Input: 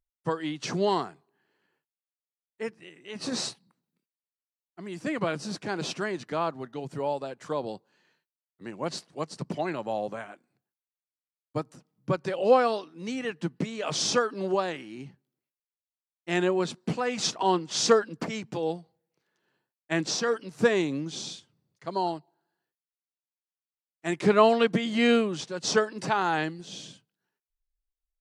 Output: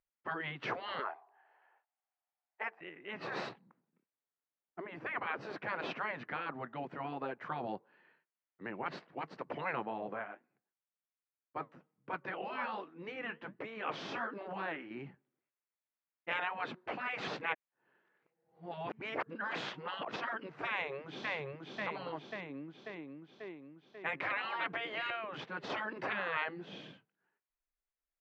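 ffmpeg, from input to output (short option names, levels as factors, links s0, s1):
-filter_complex "[0:a]asettb=1/sr,asplit=3[s0][s1][s2];[s0]atrim=end=0.994[s3];[s1]atrim=start=0.99:end=2.81,asetpts=PTS-STARTPTS,afade=t=in:d=0.004:c=qsin,afade=t=out:st=1.816:d=0.004:c=qsin,highpass=f=740:t=q:w=5.6[s4];[s2]atrim=start=2.806[s5];[s3][s4]acrossfade=d=0.004:c1=hsin:c2=qsin[s6];[s6][s5]acrossfade=d=0.004:c1=qsin:c2=hsin,asettb=1/sr,asplit=3[s7][s8][s9];[s7]atrim=end=3.494[s10];[s8]atrim=start=3.49:end=5.41,asetpts=PTS-STARTPTS,afade=t=in:d=0.004:c=qsin,afade=t=out:st=1.916:d=0.004:c=qsin,tiltshelf=f=1300:g=4.5[s11];[s9]atrim=start=5.406[s12];[s10][s11]acrossfade=d=0.004:c1=hsin:c2=qsin[s13];[s13][s12]acrossfade=d=0.004:c1=qsin:c2=hsin,asettb=1/sr,asplit=3[s14][s15][s16];[s14]atrim=end=9.854[s17];[s15]atrim=start=9.85:end=14.91,asetpts=PTS-STARTPTS,afade=t=in:d=0.004:c=qsin,afade=t=out:st=5.056:d=0.004:c=qsin,flanger=delay=3.5:depth=8.8:regen=-65:speed=1.3:shape=triangular[s18];[s16]atrim=start=14.906[s19];[s17][s18]acrossfade=d=0.004:c1=hsin:c2=qsin[s20];[s20][s19]acrossfade=d=0.004:c1=qsin:c2=hsin,asplit=2[s21][s22];[s22]afade=t=in:st=20.7:d=0.01,afade=t=out:st=21.32:d=0.01,aecho=0:1:540|1080|1620|2160|2700|3240|3780|4320|4860:0.707946|0.424767|0.25486|0.152916|0.0917498|0.0550499|0.0330299|0.019818|0.0118908[s23];[s21][s23]amix=inputs=2:normalize=0,asettb=1/sr,asplit=3[s24][s25][s26];[s24]atrim=end=25.104[s27];[s25]atrim=start=25.1:end=25.7,asetpts=PTS-STARTPTS,afade=t=in:d=0.004:c=qsin,afade=t=out:st=0.596:d=0.004:c=qsin,acompressor=threshold=0.0355:ratio=3:attack=3.2:release=140:knee=1:detection=peak[s28];[s26]atrim=start=25.696[s29];[s27][s28]acrossfade=d=0.004:c1=hsin:c2=qsin[s30];[s30][s29]acrossfade=d=0.004:c1=qsin:c2=hsin,asplit=3[s31][s32][s33];[s31]atrim=end=17.282[s34];[s32]atrim=start=17.278:end=20.162,asetpts=PTS-STARTPTS,areverse[s35];[s33]atrim=start=20.158[s36];[s34][s35]acrossfade=d=0.004:c1=hsin:c2=hsin[s37];[s37][s36]acrossfade=d=0.004:c1=hsin:c2=hsin,afftfilt=real='re*lt(hypot(re,im),0.1)':imag='im*lt(hypot(re,im),0.1)':win_size=1024:overlap=0.75,lowpass=f=2200:w=0.5412,lowpass=f=2200:w=1.3066,aemphasis=mode=production:type=bsi,volume=1.33"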